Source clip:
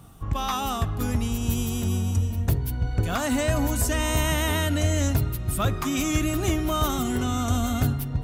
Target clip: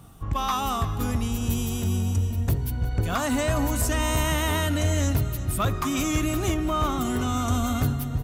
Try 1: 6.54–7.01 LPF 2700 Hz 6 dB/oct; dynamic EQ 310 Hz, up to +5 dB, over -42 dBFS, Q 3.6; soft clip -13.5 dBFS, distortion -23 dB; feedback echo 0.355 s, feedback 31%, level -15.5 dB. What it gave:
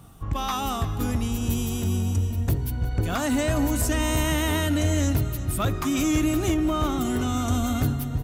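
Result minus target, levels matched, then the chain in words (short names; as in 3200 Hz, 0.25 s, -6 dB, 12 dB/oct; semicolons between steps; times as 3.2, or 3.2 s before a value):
1000 Hz band -2.5 dB
6.54–7.01 LPF 2700 Hz 6 dB/oct; dynamic EQ 1100 Hz, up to +5 dB, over -42 dBFS, Q 3.6; soft clip -13.5 dBFS, distortion -24 dB; feedback echo 0.355 s, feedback 31%, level -15.5 dB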